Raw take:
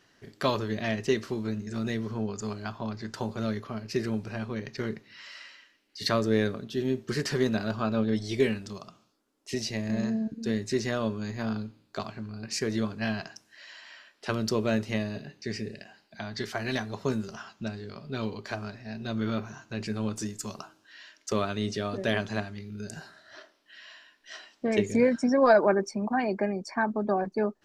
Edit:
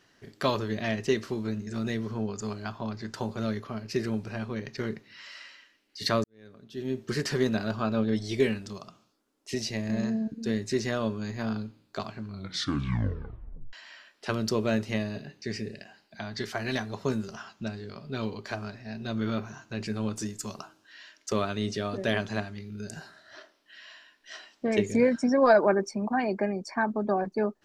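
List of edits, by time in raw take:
6.24–7.04 fade in quadratic
12.26 tape stop 1.47 s

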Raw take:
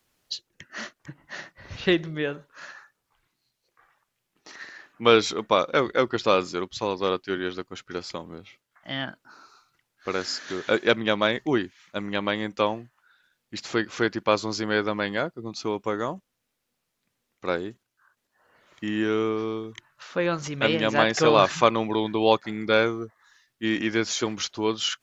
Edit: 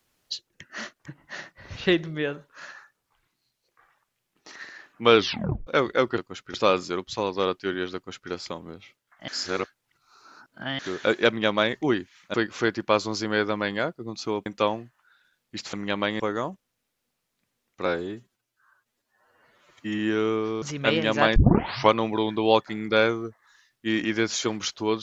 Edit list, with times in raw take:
5.17 tape stop 0.50 s
7.59–7.95 copy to 6.18
8.92–10.43 reverse
11.98–12.45 swap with 13.72–15.84
17.5–18.92 stretch 1.5×
19.55–20.39 cut
21.13 tape start 0.56 s

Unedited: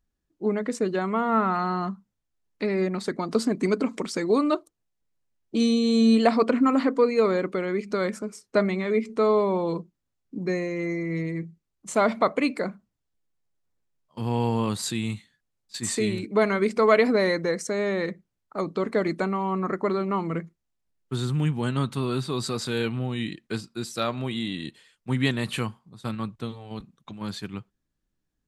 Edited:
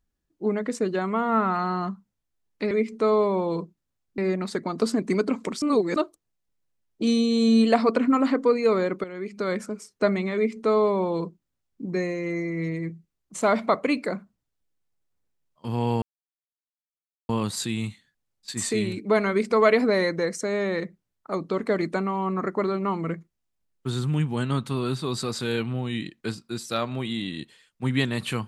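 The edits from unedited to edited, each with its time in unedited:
4.15–4.49 reverse
7.57–8.09 fade in, from -12.5 dB
8.88–10.35 copy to 2.71
14.55 insert silence 1.27 s

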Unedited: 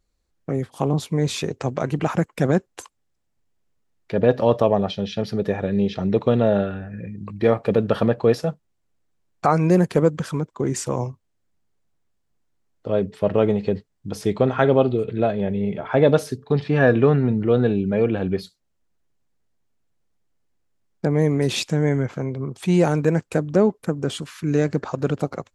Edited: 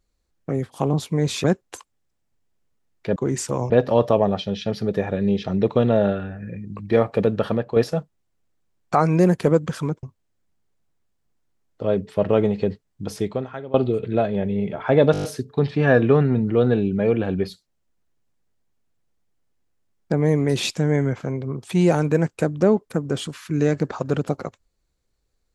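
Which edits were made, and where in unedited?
1.44–2.49 cut
7.68–8.27 fade out, to -6.5 dB
10.54–11.08 move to 4.21
14.18–14.79 fade out quadratic, to -20 dB
16.17 stutter 0.02 s, 7 plays

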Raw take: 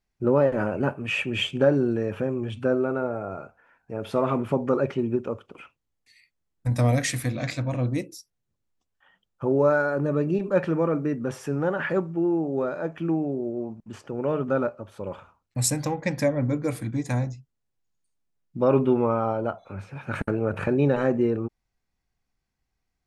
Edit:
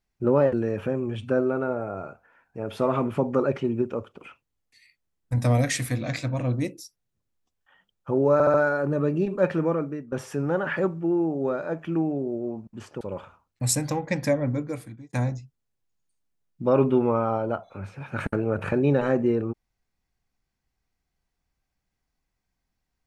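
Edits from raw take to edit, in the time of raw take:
0.53–1.87 cut
9.67 stutter 0.07 s, 4 plays
10.79–11.25 fade out, to -17 dB
14.14–14.96 cut
16.34–17.08 fade out

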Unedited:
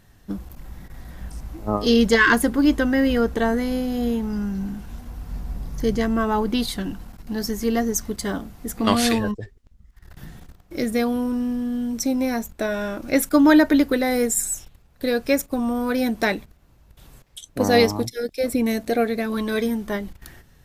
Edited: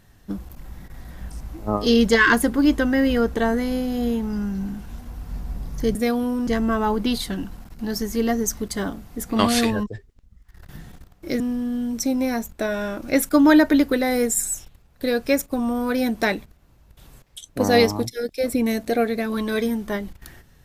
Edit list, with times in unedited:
10.88–11.4 move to 5.95

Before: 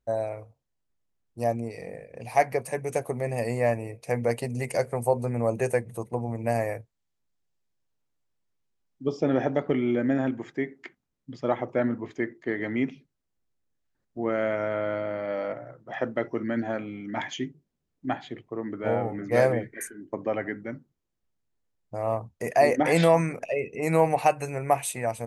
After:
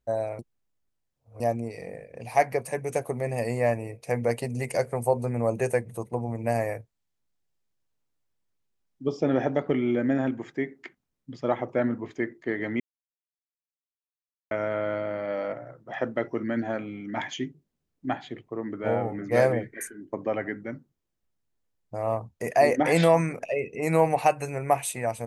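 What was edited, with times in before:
0.39–1.4 reverse
12.8–14.51 mute

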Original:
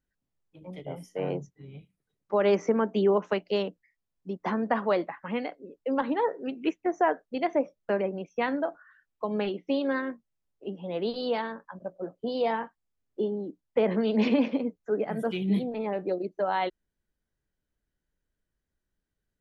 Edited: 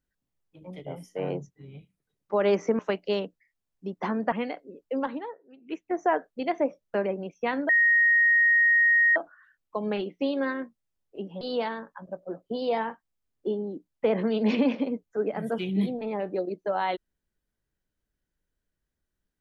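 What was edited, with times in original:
2.79–3.22 cut
4.75–5.27 cut
5.88–6.94 dip -19.5 dB, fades 0.42 s
8.64 add tone 1870 Hz -17 dBFS 1.47 s
10.89–11.14 cut

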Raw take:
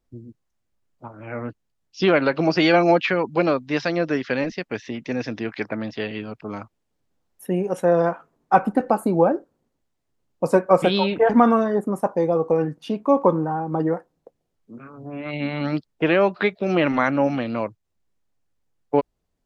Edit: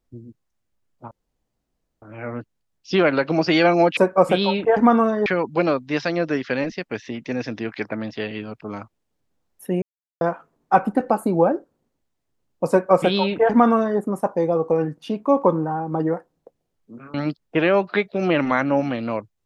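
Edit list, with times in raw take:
1.11 insert room tone 0.91 s
7.62–8.01 mute
10.5–11.79 copy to 3.06
14.94–15.61 cut

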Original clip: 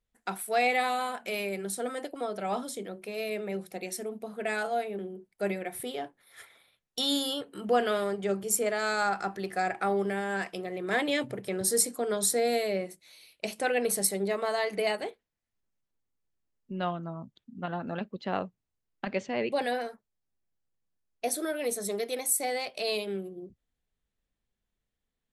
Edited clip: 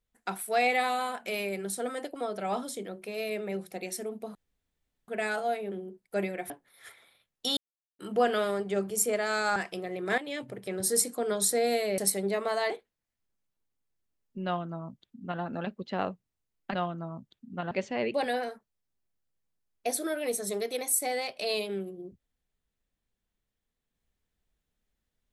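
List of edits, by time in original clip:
4.35 insert room tone 0.73 s
5.77–6.03 cut
7.1–7.52 mute
9.09–10.37 cut
10.99–12.08 fade in equal-power, from -12.5 dB
12.79–13.95 cut
14.67–15.04 cut
16.8–17.76 copy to 19.09

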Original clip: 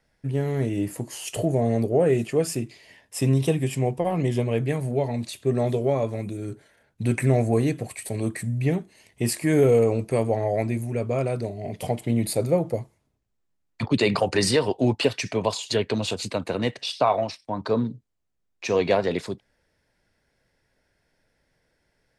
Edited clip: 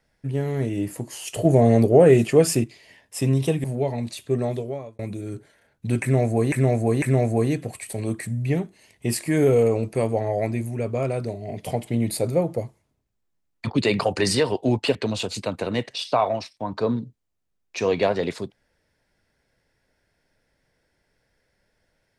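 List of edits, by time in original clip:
1.45–2.64 gain +6.5 dB
3.64–4.8 cut
5.5–6.15 fade out
7.18–7.68 loop, 3 plays
15.11–15.83 cut

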